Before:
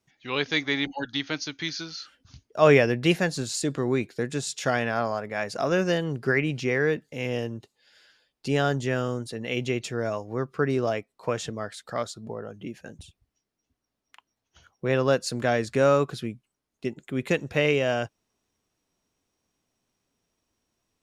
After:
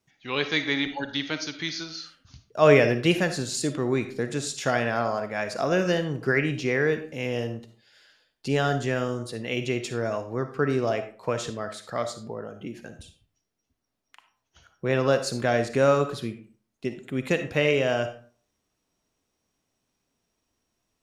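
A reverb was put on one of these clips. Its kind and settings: digital reverb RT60 0.44 s, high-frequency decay 0.65×, pre-delay 15 ms, DRR 8.5 dB

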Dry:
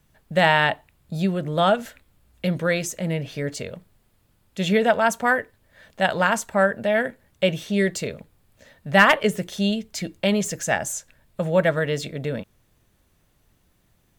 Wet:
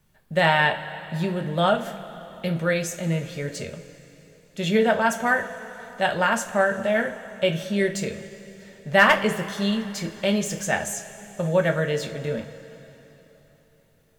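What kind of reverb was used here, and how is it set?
two-slope reverb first 0.26 s, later 3.7 s, from -18 dB, DRR 3 dB; gain -3 dB

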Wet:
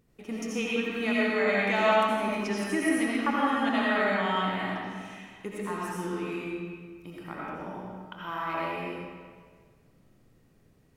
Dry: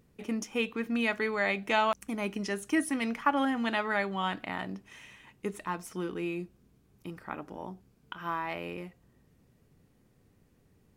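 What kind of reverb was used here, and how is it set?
digital reverb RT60 1.7 s, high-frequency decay 0.8×, pre-delay 45 ms, DRR -6 dB; gain -3.5 dB

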